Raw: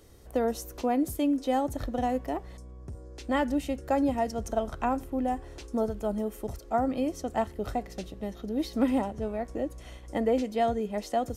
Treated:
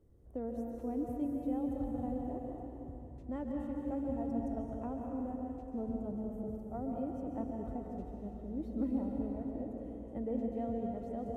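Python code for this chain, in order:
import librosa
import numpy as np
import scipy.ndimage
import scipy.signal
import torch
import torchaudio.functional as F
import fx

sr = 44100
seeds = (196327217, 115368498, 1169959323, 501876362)

y = fx.curve_eq(x, sr, hz=(200.0, 440.0, 5000.0, 7800.0), db=(0, -5, -28, -21))
y = fx.rev_plate(y, sr, seeds[0], rt60_s=3.2, hf_ratio=1.0, predelay_ms=120, drr_db=-0.5)
y = y * librosa.db_to_amplitude(-8.0)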